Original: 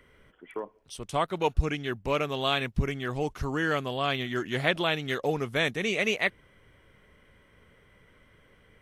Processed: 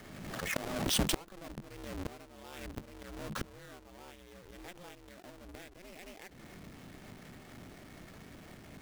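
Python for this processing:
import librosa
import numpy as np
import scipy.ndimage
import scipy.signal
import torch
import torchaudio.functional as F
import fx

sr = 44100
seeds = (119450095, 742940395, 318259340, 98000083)

y = fx.halfwave_hold(x, sr)
y = y * np.sin(2.0 * np.pi * 180.0 * np.arange(len(y)) / sr)
y = fx.gate_flip(y, sr, shuts_db=-25.0, range_db=-31)
y = fx.pre_swell(y, sr, db_per_s=36.0)
y = y * 10.0 ** (5.0 / 20.0)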